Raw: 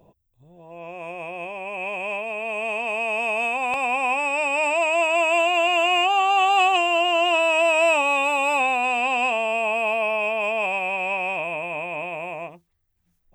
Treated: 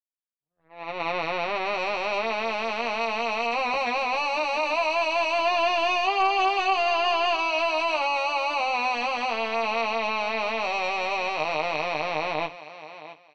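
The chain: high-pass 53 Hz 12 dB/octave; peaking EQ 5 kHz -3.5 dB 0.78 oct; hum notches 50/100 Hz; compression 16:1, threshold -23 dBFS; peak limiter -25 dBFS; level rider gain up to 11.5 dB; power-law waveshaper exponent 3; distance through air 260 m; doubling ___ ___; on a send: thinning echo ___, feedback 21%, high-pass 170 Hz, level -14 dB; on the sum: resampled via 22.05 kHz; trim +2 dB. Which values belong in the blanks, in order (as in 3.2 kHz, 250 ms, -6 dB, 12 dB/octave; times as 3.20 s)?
13 ms, -4 dB, 668 ms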